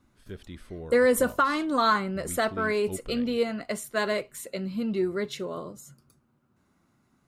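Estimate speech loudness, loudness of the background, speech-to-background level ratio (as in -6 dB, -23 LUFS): -27.0 LUFS, -43.0 LUFS, 16.0 dB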